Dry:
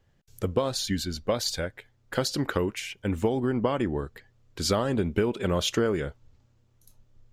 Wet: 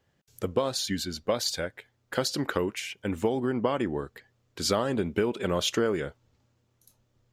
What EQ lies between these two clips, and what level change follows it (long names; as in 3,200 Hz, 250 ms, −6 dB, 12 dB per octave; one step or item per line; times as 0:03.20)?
high-pass filter 180 Hz 6 dB per octave
0.0 dB